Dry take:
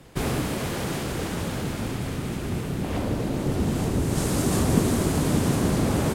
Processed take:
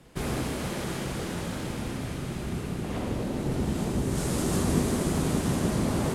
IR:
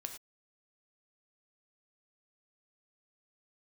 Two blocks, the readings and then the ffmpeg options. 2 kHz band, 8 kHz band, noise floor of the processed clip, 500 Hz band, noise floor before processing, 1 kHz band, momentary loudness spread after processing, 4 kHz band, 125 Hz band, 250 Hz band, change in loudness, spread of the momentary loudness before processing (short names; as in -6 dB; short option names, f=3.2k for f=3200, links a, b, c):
-3.5 dB, -3.5 dB, -35 dBFS, -3.5 dB, -31 dBFS, -4.0 dB, 8 LU, -3.5 dB, -4.5 dB, -3.5 dB, -4.0 dB, 8 LU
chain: -filter_complex "[1:a]atrim=start_sample=2205,asetrate=24255,aresample=44100[a];[0:a][a]afir=irnorm=-1:irlink=0,volume=-5dB"